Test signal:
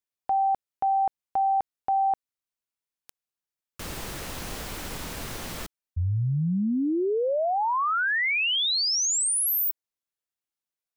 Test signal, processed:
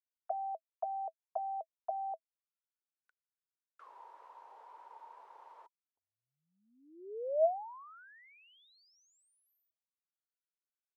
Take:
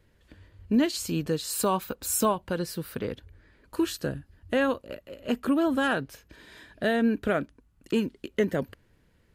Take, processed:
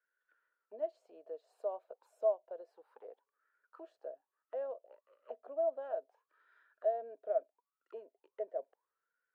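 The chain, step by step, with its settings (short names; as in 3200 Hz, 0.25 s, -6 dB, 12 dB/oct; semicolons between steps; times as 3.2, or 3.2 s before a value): auto-wah 650–1500 Hz, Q 16, down, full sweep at -26.5 dBFS; ladder high-pass 380 Hz, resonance 50%; gain +7 dB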